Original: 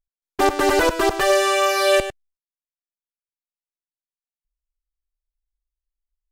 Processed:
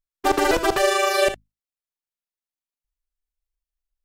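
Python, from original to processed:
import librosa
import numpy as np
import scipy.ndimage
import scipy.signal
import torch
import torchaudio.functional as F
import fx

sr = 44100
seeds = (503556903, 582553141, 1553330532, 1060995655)

y = fx.hum_notches(x, sr, base_hz=50, count=5)
y = fx.stretch_grains(y, sr, factor=0.64, grain_ms=77.0)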